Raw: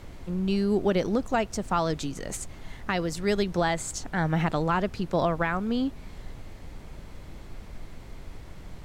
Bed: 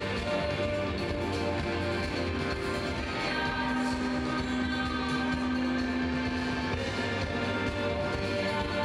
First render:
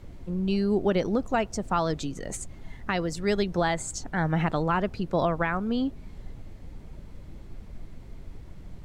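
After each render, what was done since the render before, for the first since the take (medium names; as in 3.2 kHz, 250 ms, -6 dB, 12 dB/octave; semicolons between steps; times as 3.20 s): noise reduction 8 dB, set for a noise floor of -44 dBFS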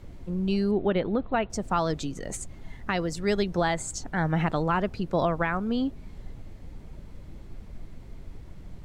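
0.71–1.50 s: elliptic low-pass 3.9 kHz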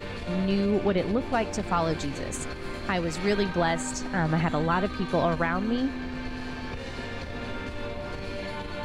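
add bed -5 dB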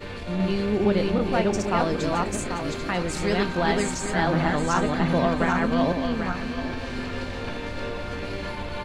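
backward echo that repeats 395 ms, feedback 46%, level -1 dB; doubling 28 ms -12.5 dB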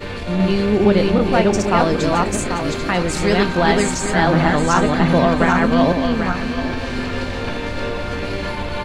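trim +7.5 dB; peak limiter -2 dBFS, peak gain reduction 1 dB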